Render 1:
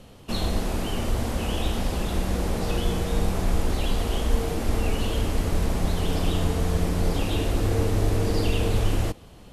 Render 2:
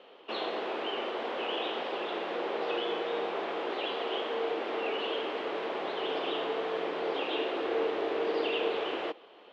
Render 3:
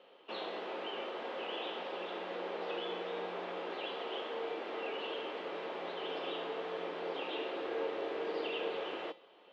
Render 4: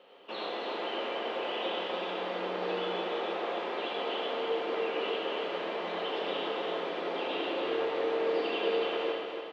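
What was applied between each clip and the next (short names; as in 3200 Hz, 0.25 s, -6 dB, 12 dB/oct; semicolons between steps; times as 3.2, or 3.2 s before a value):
Chebyshev band-pass 380–3300 Hz, order 3
resonator 180 Hz, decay 0.32 s, harmonics odd, mix 70%; gain +2.5 dB
feedback echo 0.288 s, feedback 38%, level -5 dB; on a send at -1 dB: reverb RT60 0.45 s, pre-delay 72 ms; on the sum: gain +2.5 dB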